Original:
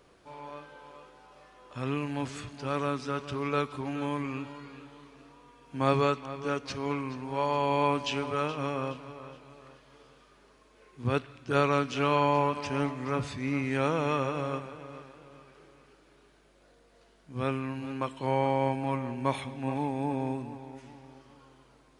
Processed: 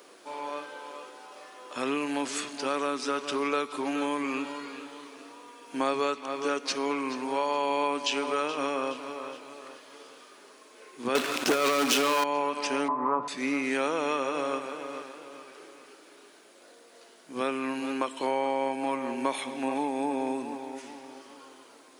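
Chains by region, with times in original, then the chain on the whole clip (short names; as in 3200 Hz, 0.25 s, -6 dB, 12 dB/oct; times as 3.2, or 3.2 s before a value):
11.15–12.24 negative-ratio compressor -28 dBFS, ratio -0.5 + sample leveller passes 5
12.88–13.28 synth low-pass 1000 Hz, resonance Q 6.5 + low shelf 140 Hz +10 dB
whole clip: HPF 260 Hz 24 dB/oct; high shelf 5500 Hz +10 dB; compressor 3:1, threshold -34 dBFS; gain +7.5 dB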